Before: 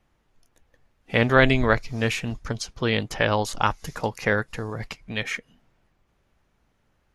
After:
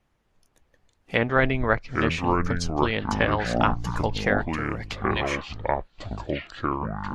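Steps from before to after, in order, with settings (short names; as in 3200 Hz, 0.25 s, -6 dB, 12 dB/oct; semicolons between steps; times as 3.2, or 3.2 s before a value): treble ducked by the level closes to 2000 Hz, closed at -16 dBFS; harmonic-percussive split harmonic -6 dB; echoes that change speed 0.245 s, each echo -7 st, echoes 2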